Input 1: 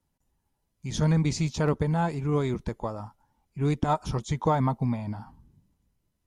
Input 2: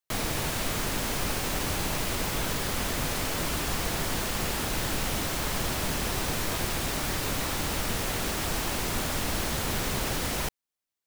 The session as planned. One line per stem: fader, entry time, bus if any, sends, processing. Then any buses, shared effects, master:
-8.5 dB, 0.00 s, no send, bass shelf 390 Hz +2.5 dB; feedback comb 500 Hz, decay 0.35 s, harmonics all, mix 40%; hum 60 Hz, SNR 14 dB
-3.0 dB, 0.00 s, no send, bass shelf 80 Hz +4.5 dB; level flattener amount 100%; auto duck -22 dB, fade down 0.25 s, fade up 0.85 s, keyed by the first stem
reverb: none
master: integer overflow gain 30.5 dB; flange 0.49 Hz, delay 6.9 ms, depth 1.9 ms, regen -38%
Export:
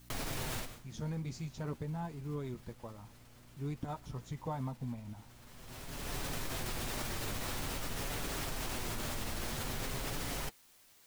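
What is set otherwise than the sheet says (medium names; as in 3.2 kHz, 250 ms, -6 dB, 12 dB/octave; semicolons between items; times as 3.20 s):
stem 2 -3.0 dB -> -10.5 dB; master: missing integer overflow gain 30.5 dB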